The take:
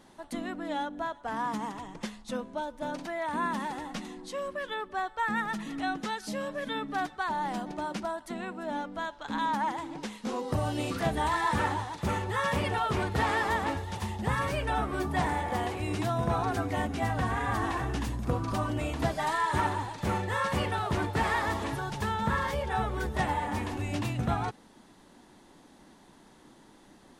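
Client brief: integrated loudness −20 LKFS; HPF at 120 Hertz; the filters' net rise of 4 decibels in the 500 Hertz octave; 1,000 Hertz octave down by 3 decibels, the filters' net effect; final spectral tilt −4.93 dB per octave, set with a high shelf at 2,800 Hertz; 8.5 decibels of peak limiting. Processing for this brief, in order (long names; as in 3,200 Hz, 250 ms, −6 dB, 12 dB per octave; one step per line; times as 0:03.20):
high-pass filter 120 Hz
parametric band 500 Hz +7 dB
parametric band 1,000 Hz −6.5 dB
high-shelf EQ 2,800 Hz +3 dB
level +13 dB
brickwall limiter −9 dBFS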